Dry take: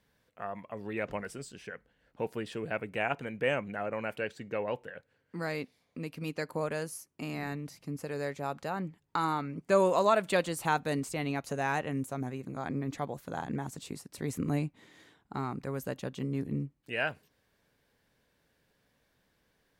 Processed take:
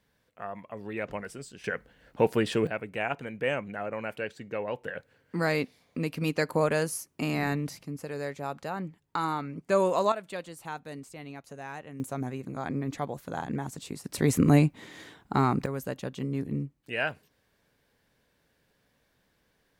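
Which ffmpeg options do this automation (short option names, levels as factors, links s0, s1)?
-af "asetnsamples=n=441:p=0,asendcmd='1.64 volume volume 11dB;2.67 volume volume 0.5dB;4.84 volume volume 8dB;7.83 volume volume 0.5dB;10.12 volume volume -9.5dB;12 volume volume 2.5dB;14.04 volume volume 11dB;15.66 volume volume 2dB',volume=1.06"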